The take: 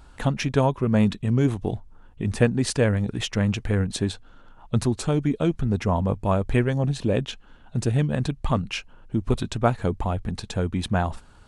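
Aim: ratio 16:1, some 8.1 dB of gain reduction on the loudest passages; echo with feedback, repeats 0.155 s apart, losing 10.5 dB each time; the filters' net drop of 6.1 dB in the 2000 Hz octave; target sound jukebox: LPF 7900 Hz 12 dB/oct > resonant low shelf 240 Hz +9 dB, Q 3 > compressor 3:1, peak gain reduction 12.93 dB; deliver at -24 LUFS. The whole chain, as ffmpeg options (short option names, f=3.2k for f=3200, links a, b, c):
-af "equalizer=f=2k:t=o:g=-8,acompressor=threshold=-22dB:ratio=16,lowpass=7.9k,lowshelf=f=240:t=q:w=3:g=9,aecho=1:1:155|310|465:0.299|0.0896|0.0269,acompressor=threshold=-26dB:ratio=3,volume=4.5dB"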